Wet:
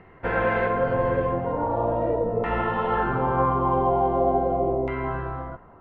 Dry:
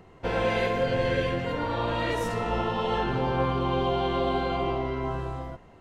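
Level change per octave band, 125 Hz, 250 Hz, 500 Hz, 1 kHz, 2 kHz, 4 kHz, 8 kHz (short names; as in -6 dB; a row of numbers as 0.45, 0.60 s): +1.0 dB, +2.0 dB, +4.0 dB, +5.5 dB, +2.0 dB, under -10 dB, under -25 dB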